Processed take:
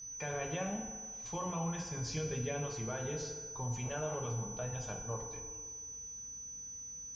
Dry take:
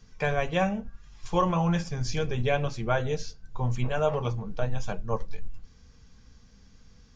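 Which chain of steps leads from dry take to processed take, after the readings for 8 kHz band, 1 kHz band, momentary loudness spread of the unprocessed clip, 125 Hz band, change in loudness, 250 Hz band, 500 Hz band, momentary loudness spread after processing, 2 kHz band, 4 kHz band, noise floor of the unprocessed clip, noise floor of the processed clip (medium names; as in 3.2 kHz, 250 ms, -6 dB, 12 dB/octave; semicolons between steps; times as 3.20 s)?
no reading, -12.5 dB, 9 LU, -10.0 dB, -10.0 dB, -10.5 dB, -11.0 dB, 6 LU, -11.5 dB, -9.5 dB, -55 dBFS, -47 dBFS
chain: high-pass 48 Hz; peak limiter -23 dBFS, peak gain reduction 10.5 dB; whistle 6 kHz -39 dBFS; FDN reverb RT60 1.6 s, low-frequency decay 0.75×, high-frequency decay 0.65×, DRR 3 dB; trim -8 dB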